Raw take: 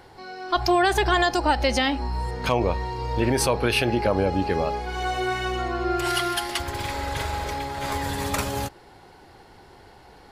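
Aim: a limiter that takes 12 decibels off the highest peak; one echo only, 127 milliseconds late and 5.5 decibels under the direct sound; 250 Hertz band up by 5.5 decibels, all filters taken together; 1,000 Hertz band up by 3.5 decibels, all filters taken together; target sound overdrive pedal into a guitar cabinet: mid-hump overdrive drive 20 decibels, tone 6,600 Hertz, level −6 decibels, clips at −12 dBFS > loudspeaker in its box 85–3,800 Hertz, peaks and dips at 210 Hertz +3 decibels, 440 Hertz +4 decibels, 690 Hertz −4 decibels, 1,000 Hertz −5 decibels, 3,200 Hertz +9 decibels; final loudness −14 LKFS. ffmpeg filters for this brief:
ffmpeg -i in.wav -filter_complex "[0:a]equalizer=frequency=250:width_type=o:gain=5.5,equalizer=frequency=1000:width_type=o:gain=8.5,alimiter=limit=-16dB:level=0:latency=1,aecho=1:1:127:0.531,asplit=2[link_01][link_02];[link_02]highpass=frequency=720:poles=1,volume=20dB,asoftclip=type=tanh:threshold=-12dB[link_03];[link_01][link_03]amix=inputs=2:normalize=0,lowpass=frequency=6600:poles=1,volume=-6dB,highpass=85,equalizer=frequency=210:width_type=q:width=4:gain=3,equalizer=frequency=440:width_type=q:width=4:gain=4,equalizer=frequency=690:width_type=q:width=4:gain=-4,equalizer=frequency=1000:width_type=q:width=4:gain=-5,equalizer=frequency=3200:width_type=q:width=4:gain=9,lowpass=frequency=3800:width=0.5412,lowpass=frequency=3800:width=1.3066,volume=5.5dB" out.wav

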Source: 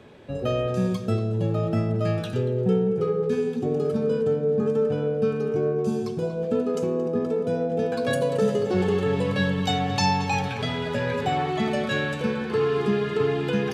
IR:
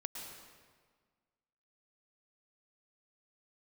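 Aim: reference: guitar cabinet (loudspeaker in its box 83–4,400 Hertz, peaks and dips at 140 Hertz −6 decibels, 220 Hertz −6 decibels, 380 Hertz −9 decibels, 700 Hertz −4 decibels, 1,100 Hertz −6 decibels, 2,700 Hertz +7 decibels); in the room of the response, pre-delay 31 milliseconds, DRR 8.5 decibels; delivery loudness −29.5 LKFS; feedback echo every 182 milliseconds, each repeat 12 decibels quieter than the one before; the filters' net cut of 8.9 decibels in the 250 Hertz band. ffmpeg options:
-filter_complex "[0:a]equalizer=frequency=250:width_type=o:gain=-6,aecho=1:1:182|364|546:0.251|0.0628|0.0157,asplit=2[link_01][link_02];[1:a]atrim=start_sample=2205,adelay=31[link_03];[link_02][link_03]afir=irnorm=-1:irlink=0,volume=-7.5dB[link_04];[link_01][link_04]amix=inputs=2:normalize=0,highpass=83,equalizer=frequency=140:width_type=q:width=4:gain=-6,equalizer=frequency=220:width_type=q:width=4:gain=-6,equalizer=frequency=380:width_type=q:width=4:gain=-9,equalizer=frequency=700:width_type=q:width=4:gain=-4,equalizer=frequency=1100:width_type=q:width=4:gain=-6,equalizer=frequency=2700:width_type=q:width=4:gain=7,lowpass=frequency=4400:width=0.5412,lowpass=frequency=4400:width=1.3066,volume=-1dB"

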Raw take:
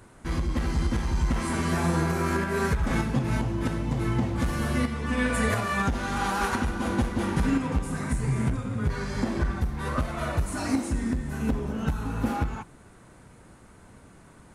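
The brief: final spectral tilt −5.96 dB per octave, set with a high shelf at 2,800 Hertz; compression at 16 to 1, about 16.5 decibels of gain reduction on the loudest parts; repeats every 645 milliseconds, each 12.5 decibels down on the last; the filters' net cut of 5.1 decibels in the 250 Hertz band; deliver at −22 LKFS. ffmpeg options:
ffmpeg -i in.wav -af "equalizer=frequency=250:width_type=o:gain=-6.5,highshelf=frequency=2800:gain=-6,acompressor=threshold=-38dB:ratio=16,aecho=1:1:645|1290|1935:0.237|0.0569|0.0137,volume=21dB" out.wav

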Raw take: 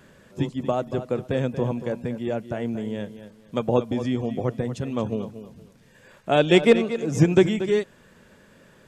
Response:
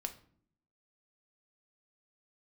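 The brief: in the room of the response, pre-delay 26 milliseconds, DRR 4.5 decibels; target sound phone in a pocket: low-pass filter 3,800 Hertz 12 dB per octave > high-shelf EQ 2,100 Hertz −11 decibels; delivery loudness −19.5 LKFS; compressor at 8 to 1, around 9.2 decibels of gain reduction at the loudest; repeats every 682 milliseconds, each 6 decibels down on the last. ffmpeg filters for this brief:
-filter_complex "[0:a]acompressor=threshold=-20dB:ratio=8,aecho=1:1:682|1364|2046|2728|3410|4092:0.501|0.251|0.125|0.0626|0.0313|0.0157,asplit=2[link_01][link_02];[1:a]atrim=start_sample=2205,adelay=26[link_03];[link_02][link_03]afir=irnorm=-1:irlink=0,volume=-3.5dB[link_04];[link_01][link_04]amix=inputs=2:normalize=0,lowpass=3800,highshelf=frequency=2100:gain=-11,volume=7dB"

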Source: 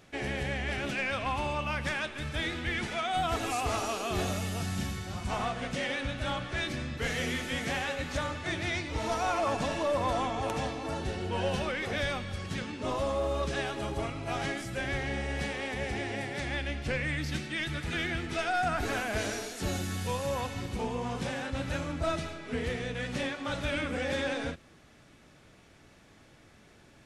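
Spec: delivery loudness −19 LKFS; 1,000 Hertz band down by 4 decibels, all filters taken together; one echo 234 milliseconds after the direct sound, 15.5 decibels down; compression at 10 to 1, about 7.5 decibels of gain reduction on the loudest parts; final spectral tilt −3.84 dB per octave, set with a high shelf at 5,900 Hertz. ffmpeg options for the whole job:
ffmpeg -i in.wav -af "equalizer=frequency=1000:width_type=o:gain=-6,highshelf=frequency=5900:gain=8.5,acompressor=threshold=-35dB:ratio=10,aecho=1:1:234:0.168,volume=19.5dB" out.wav

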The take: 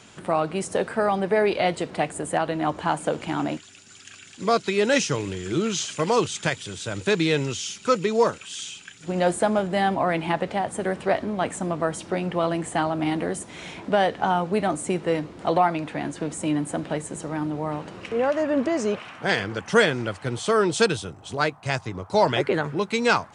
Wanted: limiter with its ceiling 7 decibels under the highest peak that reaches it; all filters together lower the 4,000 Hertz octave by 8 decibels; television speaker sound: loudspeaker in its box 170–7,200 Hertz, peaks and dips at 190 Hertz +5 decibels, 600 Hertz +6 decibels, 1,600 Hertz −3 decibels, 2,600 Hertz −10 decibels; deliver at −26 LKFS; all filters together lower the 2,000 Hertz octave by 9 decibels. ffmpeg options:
ffmpeg -i in.wav -af "equalizer=frequency=2000:width_type=o:gain=-6.5,equalizer=frequency=4000:width_type=o:gain=-5.5,alimiter=limit=-14.5dB:level=0:latency=1,highpass=frequency=170:width=0.5412,highpass=frequency=170:width=1.3066,equalizer=frequency=190:width_type=q:width=4:gain=5,equalizer=frequency=600:width_type=q:width=4:gain=6,equalizer=frequency=1600:width_type=q:width=4:gain=-3,equalizer=frequency=2600:width_type=q:width=4:gain=-10,lowpass=frequency=7200:width=0.5412,lowpass=frequency=7200:width=1.3066,volume=-1dB" out.wav

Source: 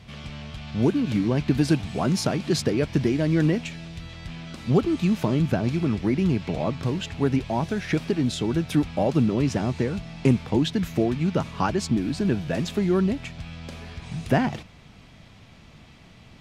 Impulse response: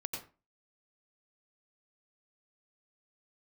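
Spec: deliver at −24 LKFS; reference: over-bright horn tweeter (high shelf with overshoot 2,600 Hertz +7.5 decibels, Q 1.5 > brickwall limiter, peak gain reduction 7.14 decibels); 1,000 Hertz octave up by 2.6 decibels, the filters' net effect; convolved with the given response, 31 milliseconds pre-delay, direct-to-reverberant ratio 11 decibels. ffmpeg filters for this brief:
-filter_complex "[0:a]equalizer=frequency=1000:width_type=o:gain=4.5,asplit=2[link_01][link_02];[1:a]atrim=start_sample=2205,adelay=31[link_03];[link_02][link_03]afir=irnorm=-1:irlink=0,volume=-11.5dB[link_04];[link_01][link_04]amix=inputs=2:normalize=0,highshelf=frequency=2600:width_type=q:width=1.5:gain=7.5,volume=0.5dB,alimiter=limit=-12.5dB:level=0:latency=1"

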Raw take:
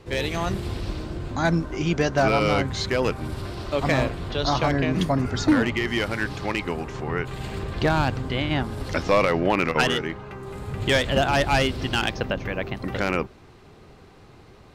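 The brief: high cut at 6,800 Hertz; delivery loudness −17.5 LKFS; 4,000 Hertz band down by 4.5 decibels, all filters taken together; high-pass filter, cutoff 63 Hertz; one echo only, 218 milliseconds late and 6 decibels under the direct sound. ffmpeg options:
ffmpeg -i in.wav -af "highpass=63,lowpass=6800,equalizer=frequency=4000:width_type=o:gain=-6,aecho=1:1:218:0.501,volume=6.5dB" out.wav

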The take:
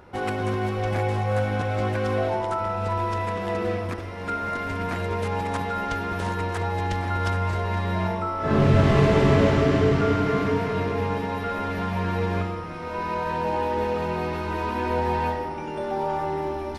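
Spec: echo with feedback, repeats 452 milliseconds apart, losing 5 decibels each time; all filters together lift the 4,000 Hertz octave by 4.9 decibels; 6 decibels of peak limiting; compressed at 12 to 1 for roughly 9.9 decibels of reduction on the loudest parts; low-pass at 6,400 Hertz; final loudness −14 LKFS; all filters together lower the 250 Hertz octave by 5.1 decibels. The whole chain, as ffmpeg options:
ffmpeg -i in.wav -af "lowpass=6400,equalizer=frequency=250:width_type=o:gain=-7.5,equalizer=frequency=4000:width_type=o:gain=7,acompressor=threshold=-25dB:ratio=12,alimiter=limit=-23dB:level=0:latency=1,aecho=1:1:452|904|1356|1808|2260|2712|3164:0.562|0.315|0.176|0.0988|0.0553|0.031|0.0173,volume=16dB" out.wav

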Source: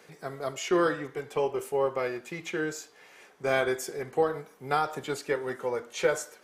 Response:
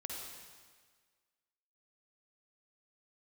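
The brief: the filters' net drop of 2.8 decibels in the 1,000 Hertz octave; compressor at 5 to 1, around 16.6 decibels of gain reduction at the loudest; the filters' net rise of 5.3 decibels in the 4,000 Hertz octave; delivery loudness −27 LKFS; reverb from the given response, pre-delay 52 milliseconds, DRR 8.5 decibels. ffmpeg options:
-filter_complex "[0:a]equalizer=frequency=1000:width_type=o:gain=-4.5,equalizer=frequency=4000:width_type=o:gain=7.5,acompressor=threshold=-40dB:ratio=5,asplit=2[link_01][link_02];[1:a]atrim=start_sample=2205,adelay=52[link_03];[link_02][link_03]afir=irnorm=-1:irlink=0,volume=-7.5dB[link_04];[link_01][link_04]amix=inputs=2:normalize=0,volume=15.5dB"

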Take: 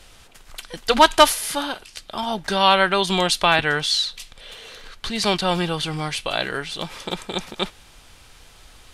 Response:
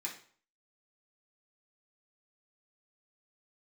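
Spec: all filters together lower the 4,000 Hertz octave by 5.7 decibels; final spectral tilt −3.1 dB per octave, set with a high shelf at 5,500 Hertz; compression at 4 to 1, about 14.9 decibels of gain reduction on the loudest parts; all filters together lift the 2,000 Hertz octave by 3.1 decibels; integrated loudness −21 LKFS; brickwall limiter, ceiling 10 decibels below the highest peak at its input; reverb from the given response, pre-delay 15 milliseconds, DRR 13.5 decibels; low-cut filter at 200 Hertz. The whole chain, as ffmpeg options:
-filter_complex "[0:a]highpass=200,equalizer=frequency=2000:width_type=o:gain=7,equalizer=frequency=4000:width_type=o:gain=-7.5,highshelf=frequency=5500:gain=-8,acompressor=threshold=-25dB:ratio=4,alimiter=limit=-20dB:level=0:latency=1,asplit=2[link_01][link_02];[1:a]atrim=start_sample=2205,adelay=15[link_03];[link_02][link_03]afir=irnorm=-1:irlink=0,volume=-14dB[link_04];[link_01][link_04]amix=inputs=2:normalize=0,volume=12dB"

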